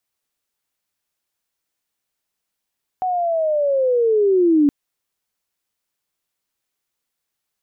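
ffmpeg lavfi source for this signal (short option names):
-f lavfi -i "aevalsrc='pow(10,(-18+7.5*t/1.67)/20)*sin(2*PI*(750*t-470*t*t/(2*1.67)))':d=1.67:s=44100"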